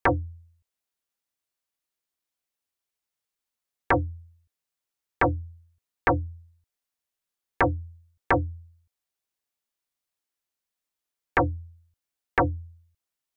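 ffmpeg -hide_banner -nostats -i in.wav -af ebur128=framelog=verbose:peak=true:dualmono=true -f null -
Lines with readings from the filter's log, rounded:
Integrated loudness:
  I:         -24.1 LUFS
  Threshold: -36.4 LUFS
Loudness range:
  LRA:         4.8 LU
  Threshold: -49.2 LUFS
  LRA low:   -31.8 LUFS
  LRA high:  -27.0 LUFS
True peak:
  Peak:      -11.9 dBFS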